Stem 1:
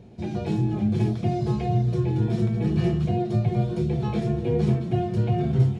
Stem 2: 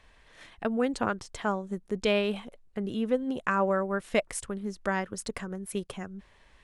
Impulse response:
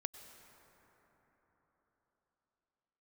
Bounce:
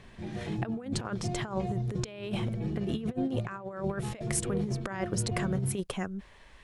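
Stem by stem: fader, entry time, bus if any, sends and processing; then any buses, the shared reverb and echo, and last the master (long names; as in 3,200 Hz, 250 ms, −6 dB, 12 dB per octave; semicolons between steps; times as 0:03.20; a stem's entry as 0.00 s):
−12.0 dB, 0.00 s, no send, soft clipping −13 dBFS, distortion −22 dB
+1.0 dB, 0.00 s, no send, no processing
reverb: not used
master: compressor whose output falls as the input rises −31 dBFS, ratio −0.5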